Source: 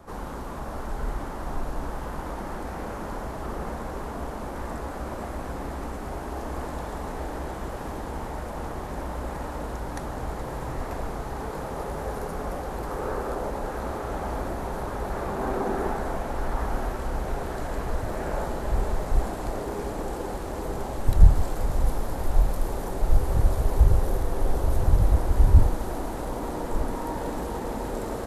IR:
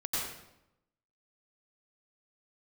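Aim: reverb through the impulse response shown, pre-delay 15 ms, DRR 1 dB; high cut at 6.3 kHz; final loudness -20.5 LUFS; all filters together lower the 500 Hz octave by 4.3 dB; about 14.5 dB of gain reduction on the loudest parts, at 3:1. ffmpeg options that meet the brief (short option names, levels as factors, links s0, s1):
-filter_complex "[0:a]lowpass=6300,equalizer=f=500:t=o:g=-5.5,acompressor=threshold=0.0447:ratio=3,asplit=2[s0][s1];[1:a]atrim=start_sample=2205,adelay=15[s2];[s1][s2]afir=irnorm=-1:irlink=0,volume=0.447[s3];[s0][s3]amix=inputs=2:normalize=0,volume=3.98"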